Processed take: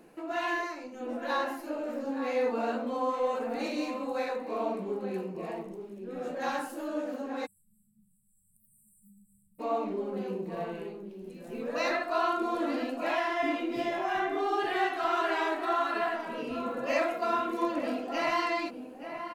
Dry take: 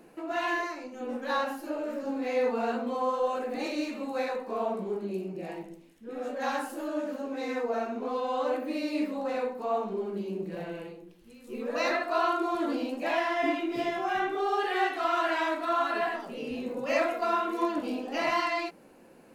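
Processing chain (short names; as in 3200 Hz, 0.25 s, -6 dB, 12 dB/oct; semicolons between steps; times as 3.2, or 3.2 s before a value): outdoor echo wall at 150 m, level -8 dB; spectral delete 7.46–9.59, 200–7600 Hz; gain -1.5 dB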